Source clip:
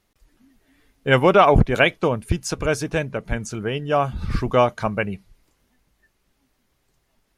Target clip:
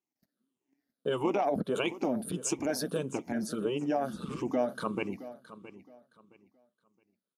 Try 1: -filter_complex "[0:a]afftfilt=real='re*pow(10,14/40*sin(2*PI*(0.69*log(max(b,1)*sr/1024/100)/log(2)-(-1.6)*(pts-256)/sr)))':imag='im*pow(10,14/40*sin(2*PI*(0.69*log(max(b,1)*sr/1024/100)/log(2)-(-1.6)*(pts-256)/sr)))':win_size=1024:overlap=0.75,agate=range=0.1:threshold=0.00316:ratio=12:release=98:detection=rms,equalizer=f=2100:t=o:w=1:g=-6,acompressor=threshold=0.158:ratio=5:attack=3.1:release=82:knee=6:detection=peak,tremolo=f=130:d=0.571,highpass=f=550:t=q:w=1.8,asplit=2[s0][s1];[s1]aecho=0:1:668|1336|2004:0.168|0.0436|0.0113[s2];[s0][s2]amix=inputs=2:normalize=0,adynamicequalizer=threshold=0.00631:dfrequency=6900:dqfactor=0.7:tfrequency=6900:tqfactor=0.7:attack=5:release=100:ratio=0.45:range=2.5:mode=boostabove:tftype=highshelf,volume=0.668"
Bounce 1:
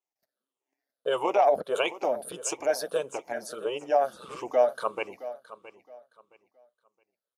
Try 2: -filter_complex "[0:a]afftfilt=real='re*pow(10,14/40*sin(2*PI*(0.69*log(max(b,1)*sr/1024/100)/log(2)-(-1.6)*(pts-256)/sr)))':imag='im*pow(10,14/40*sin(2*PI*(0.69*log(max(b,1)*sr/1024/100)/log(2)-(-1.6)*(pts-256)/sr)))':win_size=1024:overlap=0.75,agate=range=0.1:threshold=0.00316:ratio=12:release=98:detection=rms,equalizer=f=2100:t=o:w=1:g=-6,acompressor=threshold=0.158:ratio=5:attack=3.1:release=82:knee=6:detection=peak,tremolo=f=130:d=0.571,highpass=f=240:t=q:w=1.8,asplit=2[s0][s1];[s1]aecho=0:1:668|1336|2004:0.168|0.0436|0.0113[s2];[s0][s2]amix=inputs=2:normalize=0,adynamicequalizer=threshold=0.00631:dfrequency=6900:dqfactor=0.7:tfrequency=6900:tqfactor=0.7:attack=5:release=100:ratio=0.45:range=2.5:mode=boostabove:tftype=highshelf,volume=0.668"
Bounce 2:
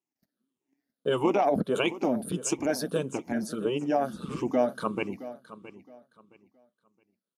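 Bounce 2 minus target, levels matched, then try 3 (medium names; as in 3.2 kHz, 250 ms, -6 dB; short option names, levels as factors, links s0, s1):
compression: peak gain reduction -5 dB
-filter_complex "[0:a]afftfilt=real='re*pow(10,14/40*sin(2*PI*(0.69*log(max(b,1)*sr/1024/100)/log(2)-(-1.6)*(pts-256)/sr)))':imag='im*pow(10,14/40*sin(2*PI*(0.69*log(max(b,1)*sr/1024/100)/log(2)-(-1.6)*(pts-256)/sr)))':win_size=1024:overlap=0.75,agate=range=0.1:threshold=0.00316:ratio=12:release=98:detection=rms,equalizer=f=2100:t=o:w=1:g=-6,acompressor=threshold=0.0794:ratio=5:attack=3.1:release=82:knee=6:detection=peak,tremolo=f=130:d=0.571,highpass=f=240:t=q:w=1.8,asplit=2[s0][s1];[s1]aecho=0:1:668|1336|2004:0.168|0.0436|0.0113[s2];[s0][s2]amix=inputs=2:normalize=0,adynamicequalizer=threshold=0.00631:dfrequency=6900:dqfactor=0.7:tfrequency=6900:tqfactor=0.7:attack=5:release=100:ratio=0.45:range=2.5:mode=boostabove:tftype=highshelf,volume=0.668"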